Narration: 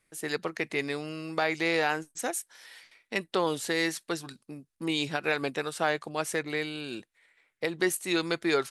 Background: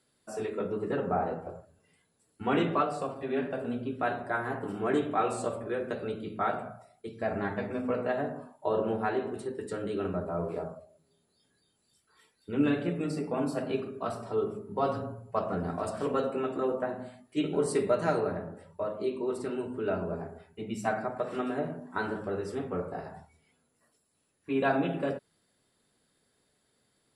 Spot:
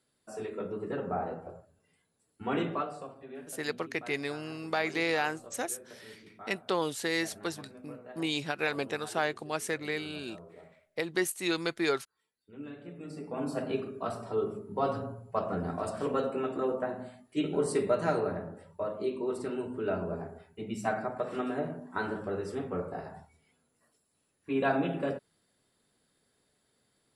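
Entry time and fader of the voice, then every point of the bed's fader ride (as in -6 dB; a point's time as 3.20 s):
3.35 s, -2.5 dB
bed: 2.66 s -4 dB
3.60 s -17.5 dB
12.74 s -17.5 dB
13.57 s -1 dB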